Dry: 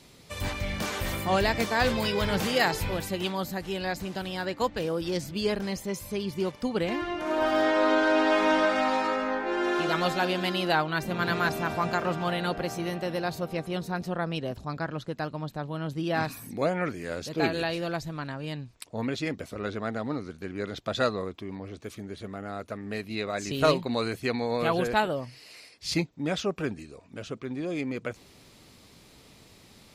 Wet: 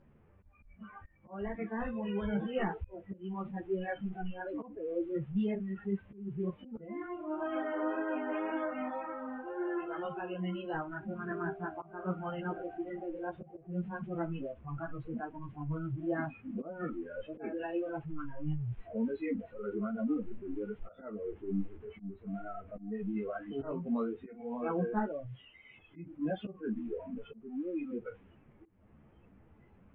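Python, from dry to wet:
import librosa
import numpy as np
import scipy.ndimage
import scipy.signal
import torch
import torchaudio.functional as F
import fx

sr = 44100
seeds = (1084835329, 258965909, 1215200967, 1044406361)

y = fx.delta_mod(x, sr, bps=16000, step_db=-26.0)
y = fx.wow_flutter(y, sr, seeds[0], rate_hz=2.1, depth_cents=27.0)
y = fx.noise_reduce_blind(y, sr, reduce_db=24)
y = fx.low_shelf(y, sr, hz=380.0, db=12.0)
y = fx.auto_swell(y, sr, attack_ms=289.0)
y = fx.env_lowpass(y, sr, base_hz=1300.0, full_db=-19.0)
y = fx.rider(y, sr, range_db=5, speed_s=2.0)
y = fx.ensemble(y, sr)
y = F.gain(torch.from_numpy(y), -9.0).numpy()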